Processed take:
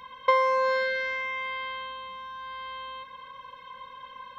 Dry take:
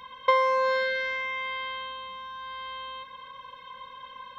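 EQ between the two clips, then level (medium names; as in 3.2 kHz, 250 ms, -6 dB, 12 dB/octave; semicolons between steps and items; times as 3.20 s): peaking EQ 3.1 kHz -2.5 dB 0.34 oct; band-stop 3.6 kHz, Q 18; 0.0 dB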